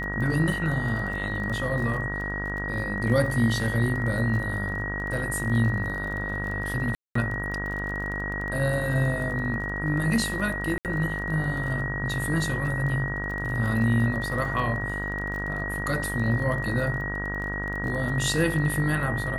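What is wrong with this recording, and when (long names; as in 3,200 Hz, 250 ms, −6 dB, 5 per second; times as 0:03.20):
mains buzz 50 Hz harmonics 38 −33 dBFS
surface crackle 25 per second −33 dBFS
whistle 1,900 Hz −31 dBFS
0:06.95–0:07.15: drop-out 204 ms
0:10.78–0:10.85: drop-out 68 ms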